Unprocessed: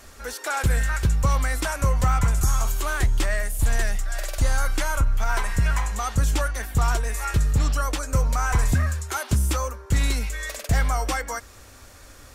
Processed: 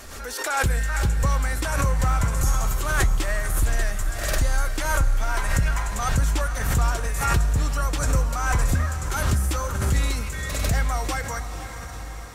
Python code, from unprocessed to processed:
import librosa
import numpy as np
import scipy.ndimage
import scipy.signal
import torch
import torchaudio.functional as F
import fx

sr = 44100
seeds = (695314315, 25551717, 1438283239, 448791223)

y = fx.echo_diffused(x, sr, ms=504, feedback_pct=65, wet_db=-10.0)
y = fx.pre_swell(y, sr, db_per_s=42.0)
y = y * librosa.db_to_amplitude(-2.0)